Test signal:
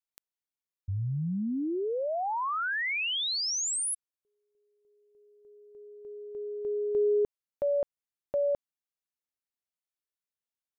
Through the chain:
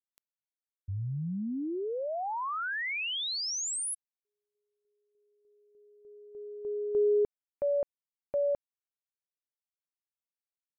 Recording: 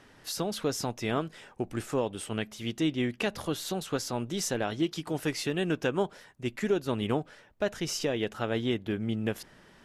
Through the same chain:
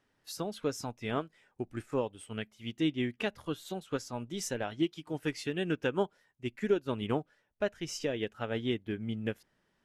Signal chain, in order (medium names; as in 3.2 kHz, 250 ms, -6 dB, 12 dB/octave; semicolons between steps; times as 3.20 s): spectral noise reduction 6 dB; upward expansion 1.5:1, over -47 dBFS